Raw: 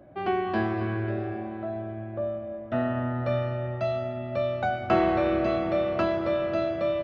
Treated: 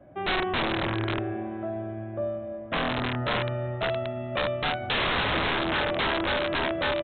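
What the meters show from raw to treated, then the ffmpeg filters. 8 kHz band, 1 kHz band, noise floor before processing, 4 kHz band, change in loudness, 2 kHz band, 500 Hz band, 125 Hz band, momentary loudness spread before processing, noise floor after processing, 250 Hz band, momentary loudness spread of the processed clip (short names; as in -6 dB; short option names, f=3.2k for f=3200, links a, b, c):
n/a, +0.5 dB, -37 dBFS, +14.5 dB, 0.0 dB, +7.5 dB, -3.0 dB, -1.0 dB, 10 LU, -37 dBFS, -3.0 dB, 8 LU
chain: -af "adynamicequalizer=threshold=0.00891:dfrequency=350:dqfactor=6.4:tfrequency=350:tqfactor=6.4:attack=5:release=100:ratio=0.375:range=1.5:mode=boostabove:tftype=bell,aresample=8000,aeval=exprs='(mod(11.2*val(0)+1,2)-1)/11.2':c=same,aresample=44100"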